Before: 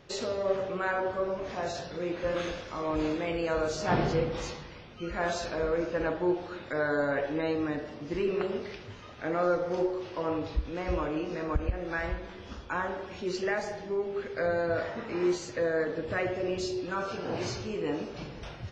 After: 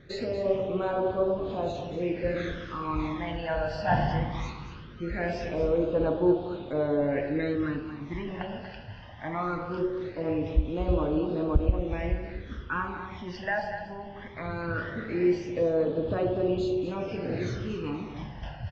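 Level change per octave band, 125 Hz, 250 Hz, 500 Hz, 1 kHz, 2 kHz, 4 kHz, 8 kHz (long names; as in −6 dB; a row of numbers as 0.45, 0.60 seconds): +5.5 dB, +3.5 dB, +1.0 dB, +1.0 dB, −1.5 dB, −3.0 dB, can't be measured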